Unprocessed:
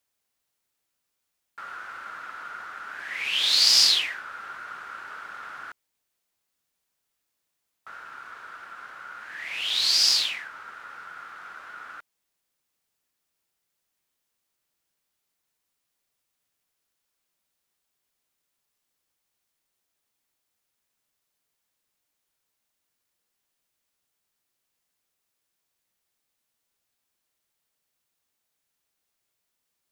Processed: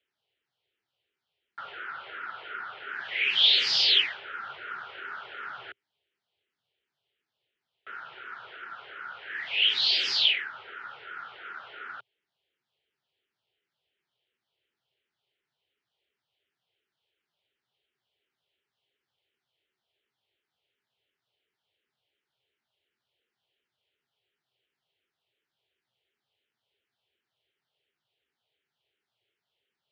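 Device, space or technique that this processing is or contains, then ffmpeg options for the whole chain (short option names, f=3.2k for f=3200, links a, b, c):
barber-pole phaser into a guitar amplifier: -filter_complex "[0:a]asettb=1/sr,asplit=3[a][b][c];[a]atrim=end=1.724[d];[b]atrim=start=1.72:end=2.88,asetpts=PTS-STARTPTS,afade=t=in:d=0.004:c=qsin,afade=t=out:st=1.156:d=0.004:c=qsin,lowpass=f=5.3k:w=0.5412,lowpass=f=5.3k:w=1.3066[e];[c]atrim=start=2.876[f];[d][e]acrossfade=d=0.004:c1=hsin:c2=qsin[g];[g][f]acrossfade=d=0.004:c1=qsin:c2=hsin,asplit=2[h][i];[i]afreqshift=-2.8[j];[h][j]amix=inputs=2:normalize=1,asoftclip=type=tanh:threshold=-16.5dB,highpass=91,equalizer=f=120:t=q:w=4:g=5,equalizer=f=190:t=q:w=4:g=-6,equalizer=f=280:t=q:w=4:g=-6,equalizer=f=400:t=q:w=4:g=8,equalizer=f=1.1k:t=q:w=4:g=-8,equalizer=f=3.1k:t=q:w=4:g=8,lowpass=f=3.9k:w=0.5412,lowpass=f=3.9k:w=1.3066,volume=4dB"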